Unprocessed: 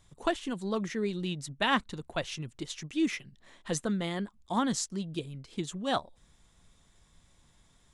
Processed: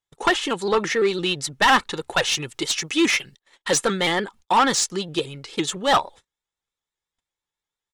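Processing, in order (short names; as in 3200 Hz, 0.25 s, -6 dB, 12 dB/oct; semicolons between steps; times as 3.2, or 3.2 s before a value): gate -52 dBFS, range -38 dB; 2.08–4.11 high shelf 4500 Hz +6 dB; comb 2.3 ms, depth 43%; dynamic EQ 1100 Hz, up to +4 dB, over -41 dBFS, Q 1.3; overdrive pedal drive 21 dB, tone 5600 Hz, clips at -10.5 dBFS; shaped vibrato saw up 5.9 Hz, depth 100 cents; gain +2.5 dB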